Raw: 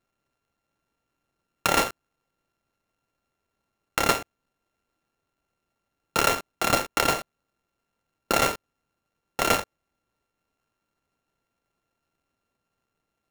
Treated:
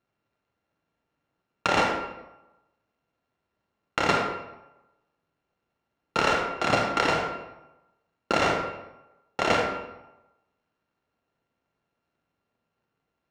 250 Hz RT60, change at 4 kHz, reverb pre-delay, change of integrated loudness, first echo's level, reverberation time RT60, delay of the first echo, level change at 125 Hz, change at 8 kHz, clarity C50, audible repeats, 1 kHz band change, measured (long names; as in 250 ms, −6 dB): 0.95 s, −2.0 dB, 32 ms, −1.0 dB, no echo audible, 0.95 s, no echo audible, +1.5 dB, −10.5 dB, 3.0 dB, no echo audible, +1.0 dB